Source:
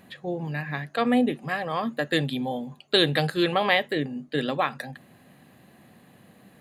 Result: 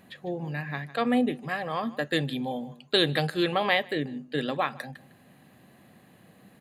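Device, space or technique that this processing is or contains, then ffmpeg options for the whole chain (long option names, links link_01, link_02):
ducked delay: -filter_complex "[0:a]asplit=3[link_01][link_02][link_03];[link_02]adelay=153,volume=-8dB[link_04];[link_03]apad=whole_len=298177[link_05];[link_04][link_05]sidechaincompress=threshold=-35dB:ratio=12:attack=31:release=824[link_06];[link_01][link_06]amix=inputs=2:normalize=0,volume=-2.5dB"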